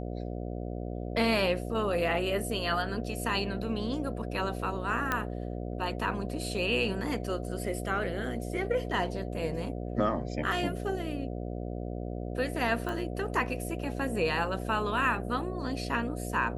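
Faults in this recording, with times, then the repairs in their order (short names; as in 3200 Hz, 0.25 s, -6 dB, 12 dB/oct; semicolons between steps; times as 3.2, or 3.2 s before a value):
buzz 60 Hz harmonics 12 -36 dBFS
5.12 pop -14 dBFS
12.89 pop -22 dBFS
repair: de-click; de-hum 60 Hz, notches 12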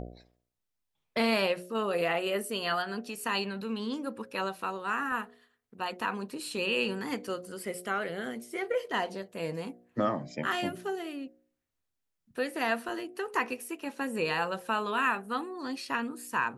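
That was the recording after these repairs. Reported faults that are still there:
none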